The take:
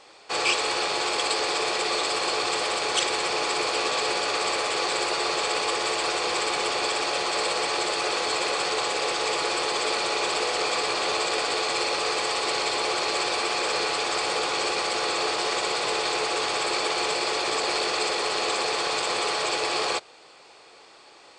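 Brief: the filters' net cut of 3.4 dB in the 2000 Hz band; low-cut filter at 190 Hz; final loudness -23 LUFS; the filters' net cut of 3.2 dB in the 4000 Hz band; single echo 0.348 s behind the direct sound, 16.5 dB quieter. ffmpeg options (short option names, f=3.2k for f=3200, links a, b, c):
-af "highpass=190,equalizer=f=2k:t=o:g=-3.5,equalizer=f=4k:t=o:g=-3,aecho=1:1:348:0.15,volume=3.5dB"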